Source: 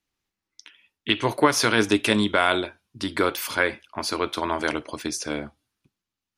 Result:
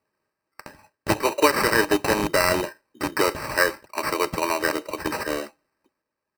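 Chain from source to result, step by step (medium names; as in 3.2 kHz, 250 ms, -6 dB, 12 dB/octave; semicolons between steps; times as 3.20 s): rattle on loud lows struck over -28 dBFS, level -15 dBFS; high-pass 320 Hz 24 dB/octave; in parallel at +1.5 dB: compression, threshold -33 dBFS, peak gain reduction 18.5 dB; on the sum: resampled via 16 kHz; sample-and-hold 13×; comb of notches 710 Hz; small resonant body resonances 620/1600/2800 Hz, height 6 dB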